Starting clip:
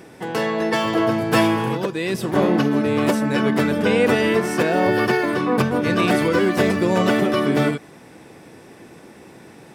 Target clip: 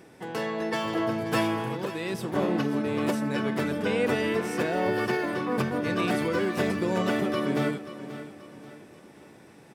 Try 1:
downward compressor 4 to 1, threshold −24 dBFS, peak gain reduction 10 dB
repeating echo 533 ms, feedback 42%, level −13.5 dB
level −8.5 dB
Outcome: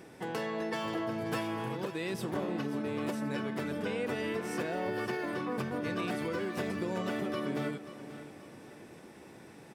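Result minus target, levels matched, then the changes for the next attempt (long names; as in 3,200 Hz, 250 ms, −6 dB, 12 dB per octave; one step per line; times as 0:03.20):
downward compressor: peak gain reduction +10 dB
remove: downward compressor 4 to 1, threshold −24 dBFS, peak gain reduction 10 dB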